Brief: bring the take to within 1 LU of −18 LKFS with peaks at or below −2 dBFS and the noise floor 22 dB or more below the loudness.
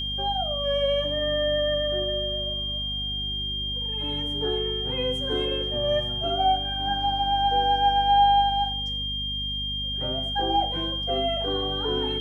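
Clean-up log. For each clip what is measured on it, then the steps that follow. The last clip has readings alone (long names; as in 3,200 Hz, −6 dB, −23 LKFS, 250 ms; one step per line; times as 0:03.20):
mains hum 50 Hz; hum harmonics up to 250 Hz; level of the hum −33 dBFS; interfering tone 3,200 Hz; level of the tone −28 dBFS; integrated loudness −24.5 LKFS; sample peak −10.0 dBFS; target loudness −18.0 LKFS
→ hum removal 50 Hz, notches 5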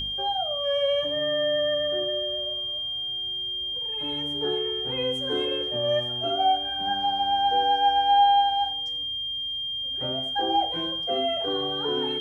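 mains hum none found; interfering tone 3,200 Hz; level of the tone −28 dBFS
→ notch filter 3,200 Hz, Q 30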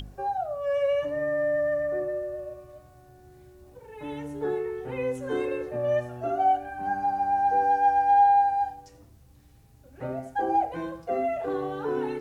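interfering tone none found; integrated loudness −26.5 LKFS; sample peak −12.5 dBFS; target loudness −18.0 LKFS
→ level +8.5 dB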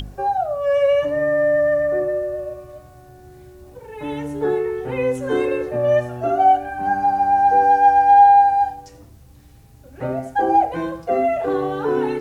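integrated loudness −18.0 LKFS; sample peak −4.0 dBFS; background noise floor −46 dBFS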